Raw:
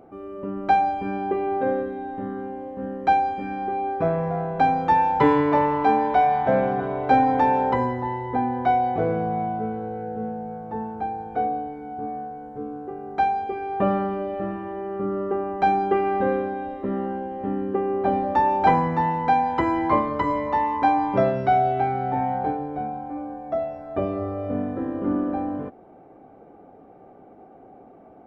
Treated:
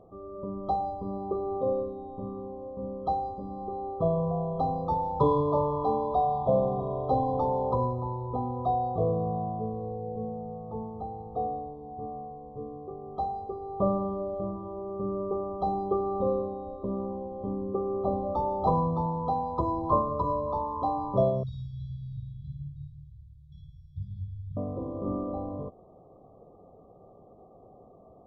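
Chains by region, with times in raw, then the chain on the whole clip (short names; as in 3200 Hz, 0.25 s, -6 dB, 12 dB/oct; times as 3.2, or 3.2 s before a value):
21.43–24.57 brick-wall FIR band-stop 170–1500 Hz + flutter echo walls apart 9.7 m, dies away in 0.92 s
whole clip: FFT band-reject 1300–3200 Hz; tone controls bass +6 dB, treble -12 dB; comb 1.8 ms, depth 53%; gain -6.5 dB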